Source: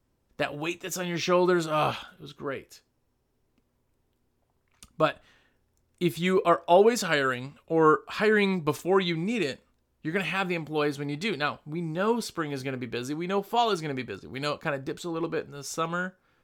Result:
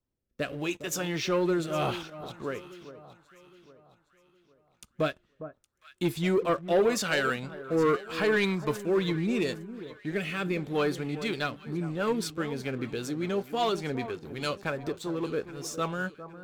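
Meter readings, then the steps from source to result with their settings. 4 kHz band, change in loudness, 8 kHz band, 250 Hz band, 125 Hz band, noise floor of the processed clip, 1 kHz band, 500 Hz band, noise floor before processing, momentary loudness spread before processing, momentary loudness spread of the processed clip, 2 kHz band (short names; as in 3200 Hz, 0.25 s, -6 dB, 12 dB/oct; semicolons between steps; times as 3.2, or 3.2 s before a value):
-2.0 dB, -2.5 dB, -0.5 dB, -1.0 dB, -0.5 dB, -72 dBFS, -6.0 dB, -2.5 dB, -73 dBFS, 13 LU, 11 LU, -2.5 dB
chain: rotary speaker horn 0.8 Hz, later 5 Hz, at 10.82; sample leveller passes 2; echo with dull and thin repeats by turns 0.407 s, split 1300 Hz, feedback 59%, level -12.5 dB; gain -6.5 dB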